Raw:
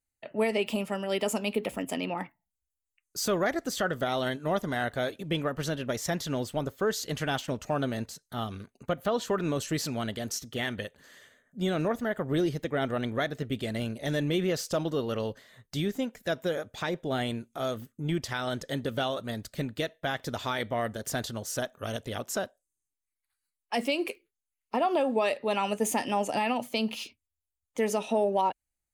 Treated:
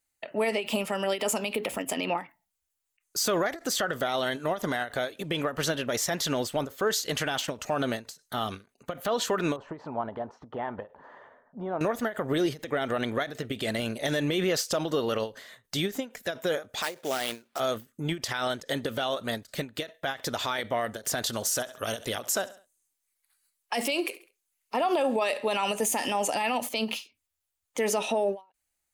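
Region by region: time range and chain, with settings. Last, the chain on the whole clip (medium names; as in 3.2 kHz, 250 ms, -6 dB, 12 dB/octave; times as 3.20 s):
9.56–11.81 s: compression 2.5:1, threshold -40 dBFS + resonant low-pass 930 Hz, resonance Q 4.5
16.82–17.60 s: high-pass 500 Hz 6 dB/octave + sample-rate reducer 6.6 kHz, jitter 20%
21.26–26.69 s: peaking EQ 12 kHz +5 dB 2 oct + feedback delay 68 ms, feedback 42%, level -23 dB
whole clip: bass shelf 270 Hz -12 dB; peak limiter -27 dBFS; endings held to a fixed fall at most 230 dB/s; trim +9 dB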